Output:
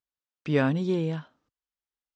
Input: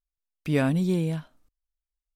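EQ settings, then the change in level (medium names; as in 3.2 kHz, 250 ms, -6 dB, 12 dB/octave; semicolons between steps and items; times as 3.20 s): distance through air 98 m; cabinet simulation 140–7100 Hz, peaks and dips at 180 Hz -7 dB, 290 Hz -4 dB, 650 Hz -5 dB, 2.3 kHz -5 dB, 4.2 kHz -3 dB; +3.5 dB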